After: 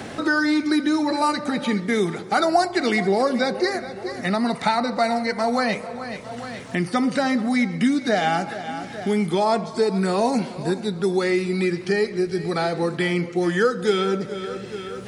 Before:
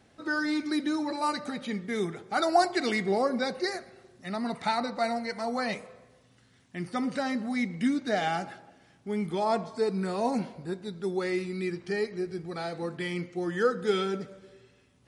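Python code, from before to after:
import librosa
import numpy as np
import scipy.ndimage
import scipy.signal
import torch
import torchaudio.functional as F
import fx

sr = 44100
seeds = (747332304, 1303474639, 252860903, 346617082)

y = fx.echo_feedback(x, sr, ms=426, feedback_pct=38, wet_db=-18.5)
y = fx.band_squash(y, sr, depth_pct=70)
y = F.gain(torch.from_numpy(y), 8.0).numpy()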